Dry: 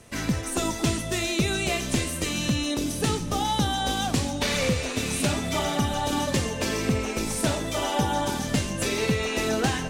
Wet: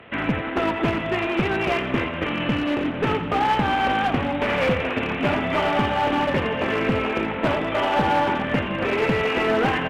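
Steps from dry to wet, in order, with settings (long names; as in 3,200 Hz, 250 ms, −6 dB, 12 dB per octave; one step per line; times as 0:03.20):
variable-slope delta modulation 16 kbit/s
high-pass filter 40 Hz 6 dB per octave
low-shelf EQ 190 Hz −11.5 dB
asymmetric clip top −27.5 dBFS
repeating echo 85 ms, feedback 42%, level −14.5 dB
level +9 dB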